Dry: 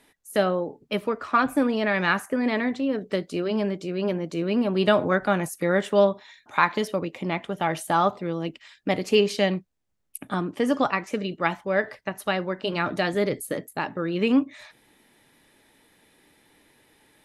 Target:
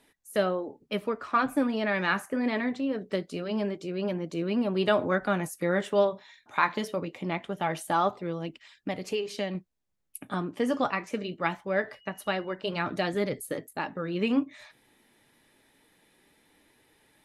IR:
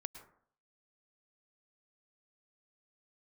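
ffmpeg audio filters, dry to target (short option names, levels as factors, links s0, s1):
-filter_complex "[0:a]asettb=1/sr,asplit=3[s0][s1][s2];[s0]atrim=end=8.444[s3];[s1]atrim=start=8.44:end=9.55,asetpts=PTS-STARTPTS,afade=t=in:d=0.004:c=qsin,afade=t=out:st=1.106:d=0.004:c=qsin,acompressor=threshold=0.0501:ratio=2.5[s4];[s2]atrim=start=9.546[s5];[s3][s4]acrossfade=d=0.004:c1=hsin:c2=qsin[s6];[s6][s5]acrossfade=d=0.004:c1=qsin:c2=hsin,asettb=1/sr,asplit=3[s7][s8][s9];[s7]atrim=end=11.934[s10];[s8]atrim=start=11.93:end=12.55,asetpts=PTS-STARTPTS,afade=t=in:d=0.004:c=qsin,afade=t=out:st=0.616:d=0.004:c=qsin,aeval=exprs='val(0)+0.00224*sin(2*PI*2900*n/s)':c=same[s11];[s9]atrim=start=12.546[s12];[s10][s11]acrossfade=d=0.004:c1=hsin:c2=qsin[s13];[s13][s12]acrossfade=d=0.004:c1=qsin:c2=hsin,flanger=delay=0.2:depth=9.2:regen=-67:speed=0.23:shape=triangular"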